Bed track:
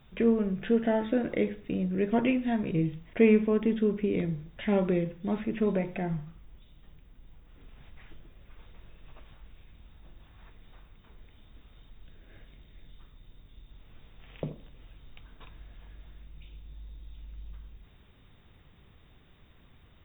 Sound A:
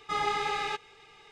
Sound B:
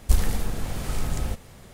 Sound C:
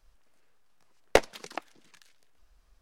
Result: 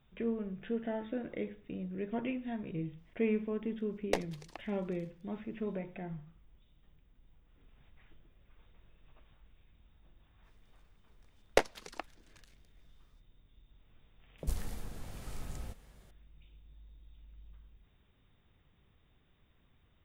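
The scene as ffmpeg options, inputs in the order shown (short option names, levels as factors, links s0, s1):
-filter_complex "[3:a]asplit=2[s0][s1];[0:a]volume=0.299[s2];[s0]equalizer=f=1400:w=5.9:g=-11.5,atrim=end=2.81,asetpts=PTS-STARTPTS,volume=0.282,afade=t=in:d=0.004:c=hsin,afade=t=out:st=2.806:d=0.004:c=hsin,adelay=2980[s3];[s1]atrim=end=2.81,asetpts=PTS-STARTPTS,volume=0.531,afade=t=in:d=0.05,afade=t=out:st=2.76:d=0.05,adelay=459522S[s4];[2:a]atrim=end=1.73,asetpts=PTS-STARTPTS,volume=0.168,afade=t=in:d=0.004:c=hsin,afade=t=out:st=1.726:d=0.004:c=hsin,adelay=14380[s5];[s2][s3][s4][s5]amix=inputs=4:normalize=0"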